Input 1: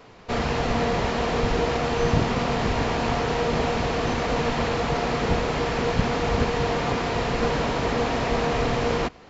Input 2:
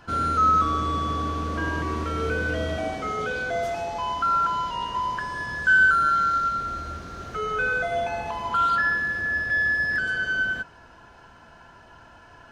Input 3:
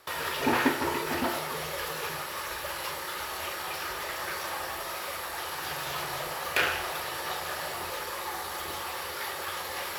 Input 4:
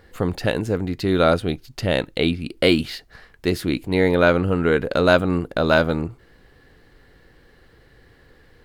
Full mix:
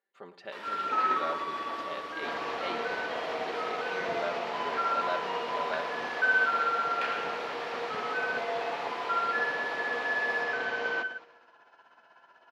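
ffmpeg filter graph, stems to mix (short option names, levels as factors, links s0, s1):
-filter_complex "[0:a]adelay=1950,volume=0.376,asplit=2[s0][s1];[s1]volume=0.158[s2];[1:a]tremolo=f=16:d=0.55,adelay=550,volume=0.531[s3];[2:a]adelay=450,volume=0.335,asplit=2[s4][s5];[s5]volume=0.447[s6];[3:a]agate=range=0.2:threshold=0.00891:ratio=16:detection=peak,aecho=1:1:5.1:0.74,volume=0.106,asplit=2[s7][s8];[s8]volume=0.178[s9];[s2][s6][s9]amix=inputs=3:normalize=0,aecho=0:1:108|216|324|432|540|648|756|864:1|0.54|0.292|0.157|0.085|0.0459|0.0248|0.0134[s10];[s0][s3][s4][s7][s10]amix=inputs=5:normalize=0,highpass=480,lowpass=3900"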